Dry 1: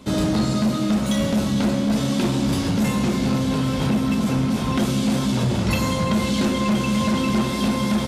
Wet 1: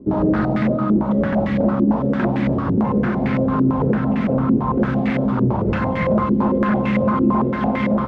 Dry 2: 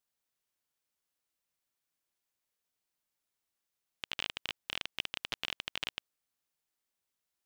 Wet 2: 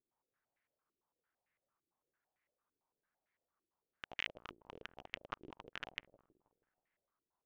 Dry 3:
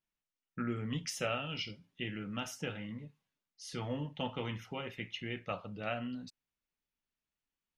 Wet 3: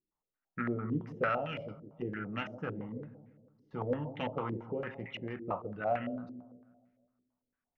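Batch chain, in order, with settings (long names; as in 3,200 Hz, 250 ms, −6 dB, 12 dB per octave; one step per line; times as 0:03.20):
phase distortion by the signal itself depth 0.088 ms
delay with a low-pass on its return 160 ms, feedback 50%, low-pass 670 Hz, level −10.5 dB
low-pass on a step sequencer 8.9 Hz 360–2,000 Hz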